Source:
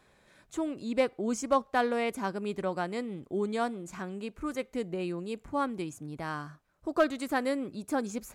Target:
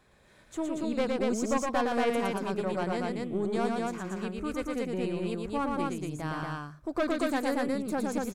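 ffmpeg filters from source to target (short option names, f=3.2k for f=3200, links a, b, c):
-filter_complex "[0:a]lowshelf=f=150:g=5,aeval=exprs='(tanh(14.1*val(0)+0.4)-tanh(0.4))/14.1':c=same,asplit=2[a][b];[b]aecho=0:1:113.7|233.2:0.708|0.794[c];[a][c]amix=inputs=2:normalize=0"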